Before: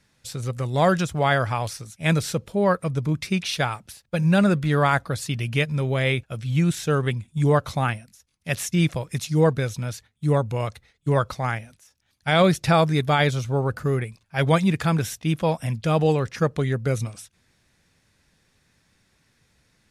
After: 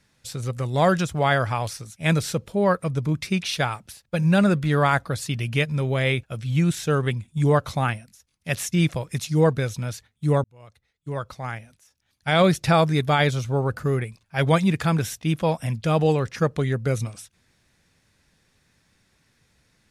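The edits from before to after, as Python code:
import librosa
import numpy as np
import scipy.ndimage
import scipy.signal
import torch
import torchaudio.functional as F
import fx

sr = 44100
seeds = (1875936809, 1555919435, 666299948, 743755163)

y = fx.edit(x, sr, fx.fade_in_span(start_s=10.44, length_s=2.03), tone=tone)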